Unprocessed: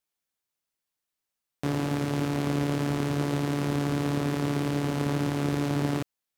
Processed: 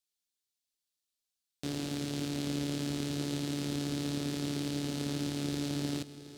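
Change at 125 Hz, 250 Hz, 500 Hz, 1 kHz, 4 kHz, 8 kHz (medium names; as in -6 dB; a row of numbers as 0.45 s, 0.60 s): -9.0 dB, -6.0 dB, -9.5 dB, -13.5 dB, +0.5 dB, +0.5 dB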